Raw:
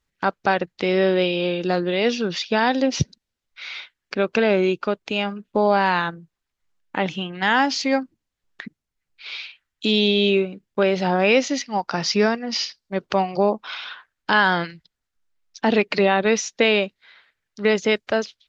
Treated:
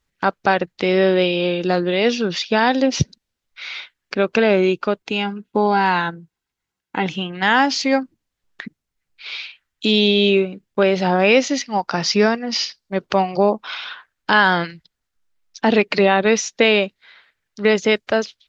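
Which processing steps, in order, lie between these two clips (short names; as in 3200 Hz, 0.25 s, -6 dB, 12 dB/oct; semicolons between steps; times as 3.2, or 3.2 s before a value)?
5.02–7.07 notch comb 600 Hz; gain +3 dB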